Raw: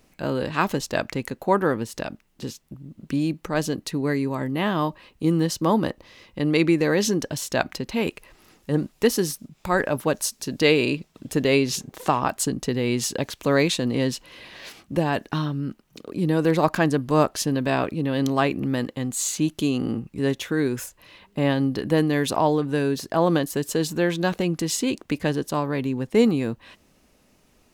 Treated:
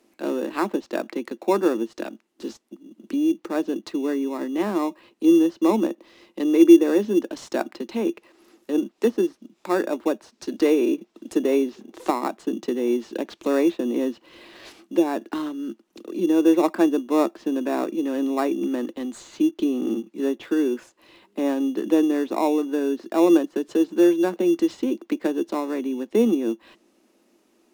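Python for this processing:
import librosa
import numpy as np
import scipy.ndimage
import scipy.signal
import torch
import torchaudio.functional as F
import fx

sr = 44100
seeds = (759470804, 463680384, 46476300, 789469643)

p1 = scipy.signal.sosfilt(scipy.signal.butter(12, 200.0, 'highpass', fs=sr, output='sos'), x)
p2 = fx.env_lowpass_down(p1, sr, base_hz=1500.0, full_db=-20.5)
p3 = fx.peak_eq(p2, sr, hz=340.0, db=12.5, octaves=0.23)
p4 = fx.sample_hold(p3, sr, seeds[0], rate_hz=3100.0, jitter_pct=0)
p5 = p3 + (p4 * librosa.db_to_amplitude(-8.5))
y = p5 * librosa.db_to_amplitude(-4.5)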